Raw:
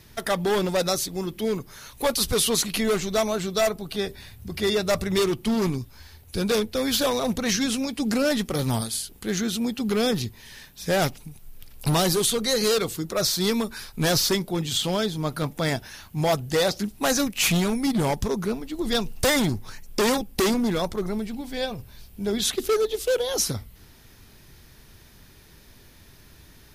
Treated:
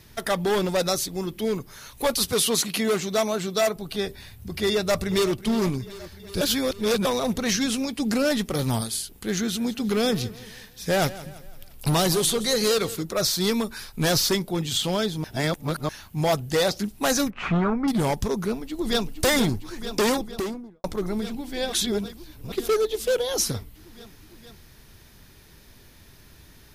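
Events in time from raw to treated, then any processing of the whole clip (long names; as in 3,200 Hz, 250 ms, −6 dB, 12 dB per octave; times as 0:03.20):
0:02.25–0:03.76: high-pass filter 120 Hz
0:04.71–0:05.35: delay throw 370 ms, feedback 75%, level −16.5 dB
0:06.41–0:07.05: reverse
0:09.20–0:13.03: repeating echo 170 ms, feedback 45%, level −17 dB
0:15.24–0:15.89: reverse
0:17.30–0:17.88: low-pass with resonance 1,300 Hz, resonance Q 2.9
0:18.43–0:19.15: delay throw 460 ms, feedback 85%, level −9.5 dB
0:20.02–0:20.84: fade out and dull
0:21.73–0:22.52: reverse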